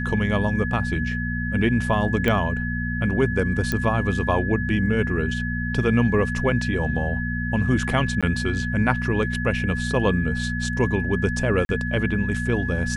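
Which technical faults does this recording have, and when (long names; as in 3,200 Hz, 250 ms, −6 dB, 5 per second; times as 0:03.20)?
mains hum 60 Hz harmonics 4 −27 dBFS
whistle 1,700 Hz −29 dBFS
0:02.28: click −10 dBFS
0:03.72: click −10 dBFS
0:08.21–0:08.23: drop-out 16 ms
0:11.65–0:11.69: drop-out 41 ms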